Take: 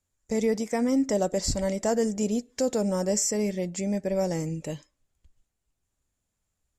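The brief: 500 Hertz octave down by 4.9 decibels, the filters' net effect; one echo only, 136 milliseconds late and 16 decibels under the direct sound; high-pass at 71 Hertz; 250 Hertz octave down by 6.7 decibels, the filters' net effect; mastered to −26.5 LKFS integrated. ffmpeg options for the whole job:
ffmpeg -i in.wav -af "highpass=71,equalizer=frequency=250:width_type=o:gain=-7.5,equalizer=frequency=500:width_type=o:gain=-4,aecho=1:1:136:0.158,volume=4.5dB" out.wav

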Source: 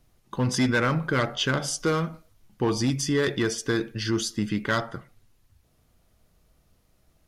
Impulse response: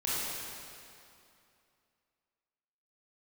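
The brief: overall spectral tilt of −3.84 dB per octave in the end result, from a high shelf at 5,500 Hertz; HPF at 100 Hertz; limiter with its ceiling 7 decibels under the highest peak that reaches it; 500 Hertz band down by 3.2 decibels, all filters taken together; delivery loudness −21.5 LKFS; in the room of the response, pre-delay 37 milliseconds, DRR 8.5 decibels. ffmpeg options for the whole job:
-filter_complex "[0:a]highpass=100,equalizer=frequency=500:width_type=o:gain=-4,highshelf=frequency=5500:gain=4,alimiter=limit=-20dB:level=0:latency=1,asplit=2[link_01][link_02];[1:a]atrim=start_sample=2205,adelay=37[link_03];[link_02][link_03]afir=irnorm=-1:irlink=0,volume=-16.5dB[link_04];[link_01][link_04]amix=inputs=2:normalize=0,volume=8dB"

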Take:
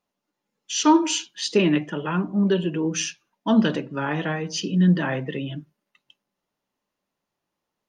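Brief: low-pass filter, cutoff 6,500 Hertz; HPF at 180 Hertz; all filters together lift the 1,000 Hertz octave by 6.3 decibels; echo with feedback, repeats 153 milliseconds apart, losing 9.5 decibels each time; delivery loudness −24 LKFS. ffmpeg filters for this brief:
ffmpeg -i in.wav -af "highpass=180,lowpass=6500,equalizer=frequency=1000:width_type=o:gain=7,aecho=1:1:153|306|459|612:0.335|0.111|0.0365|0.012,volume=-2dB" out.wav

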